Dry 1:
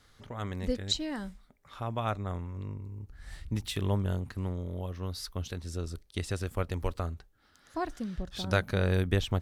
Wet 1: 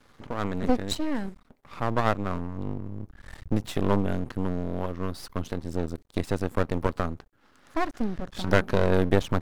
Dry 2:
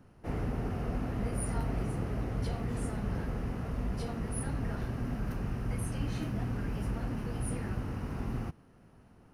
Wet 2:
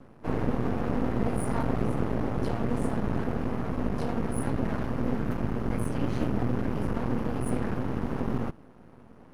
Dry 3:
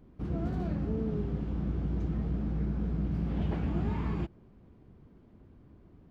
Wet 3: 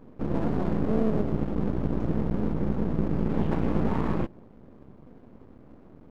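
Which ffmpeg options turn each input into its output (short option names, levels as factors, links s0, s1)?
-af "equalizer=f=125:t=o:w=1:g=5,equalizer=f=250:t=o:w=1:g=11,equalizer=f=500:t=o:w=1:g=6,equalizer=f=1000:t=o:w=1:g=9,equalizer=f=2000:t=o:w=1:g=3,aeval=exprs='max(val(0),0)':c=same,volume=1.19"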